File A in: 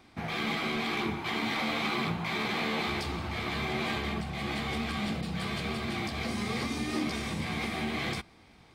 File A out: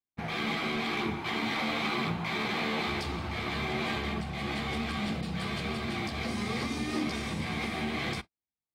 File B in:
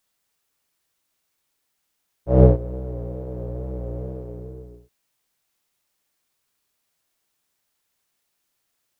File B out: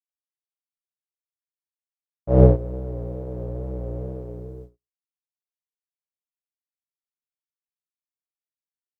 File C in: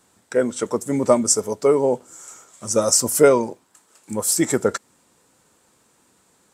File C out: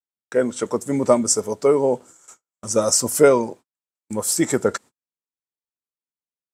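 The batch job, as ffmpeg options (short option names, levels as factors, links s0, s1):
-af "agate=range=0.00501:threshold=0.0112:ratio=16:detection=peak,highshelf=f=10000:g=-4.5"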